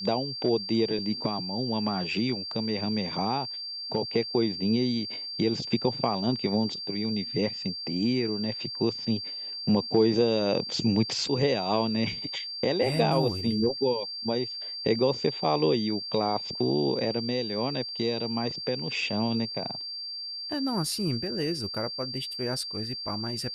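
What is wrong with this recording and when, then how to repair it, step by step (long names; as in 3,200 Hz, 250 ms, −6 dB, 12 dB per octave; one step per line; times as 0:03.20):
whistle 4,700 Hz −34 dBFS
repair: notch filter 4,700 Hz, Q 30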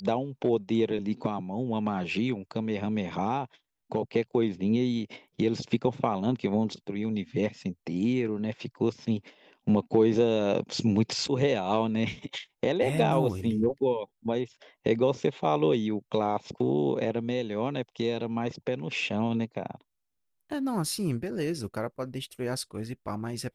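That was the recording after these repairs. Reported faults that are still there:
none of them is left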